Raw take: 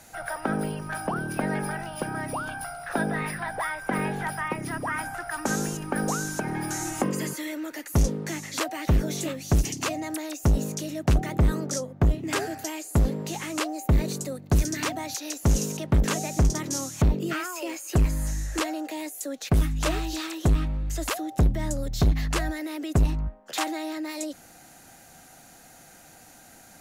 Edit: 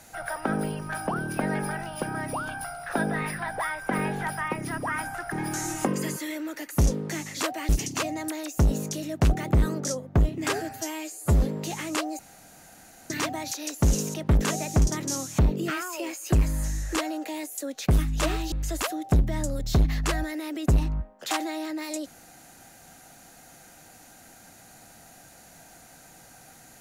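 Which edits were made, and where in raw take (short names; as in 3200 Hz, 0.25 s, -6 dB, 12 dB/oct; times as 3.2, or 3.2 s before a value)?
5.32–6.49 cut
8.86–9.55 cut
12.57–13.03 stretch 1.5×
13.82–14.73 room tone
20.15–20.79 cut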